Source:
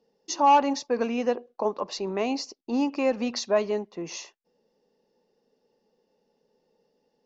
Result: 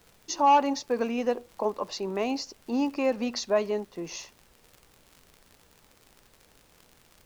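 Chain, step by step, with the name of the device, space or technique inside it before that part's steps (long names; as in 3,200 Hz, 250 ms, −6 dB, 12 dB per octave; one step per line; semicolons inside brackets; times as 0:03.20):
vinyl LP (surface crackle 77 per second −38 dBFS; pink noise bed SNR 31 dB)
level −1.5 dB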